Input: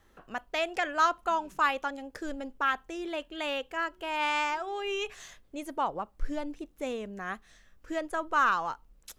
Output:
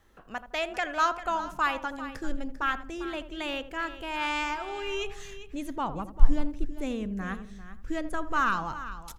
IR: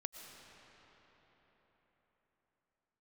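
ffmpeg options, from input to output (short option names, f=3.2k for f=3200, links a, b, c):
-filter_complex "[0:a]asplit=2[a][b];[b]adelay=81,lowpass=f=1.1k:p=1,volume=-11dB,asplit=2[c][d];[d]adelay=81,lowpass=f=1.1k:p=1,volume=0.35,asplit=2[e][f];[f]adelay=81,lowpass=f=1.1k:p=1,volume=0.35,asplit=2[g][h];[h]adelay=81,lowpass=f=1.1k:p=1,volume=0.35[i];[c][e][g][i]amix=inputs=4:normalize=0[j];[a][j]amix=inputs=2:normalize=0,asubboost=boost=6:cutoff=210,asplit=2[k][l];[l]aecho=0:1:396:0.211[m];[k][m]amix=inputs=2:normalize=0"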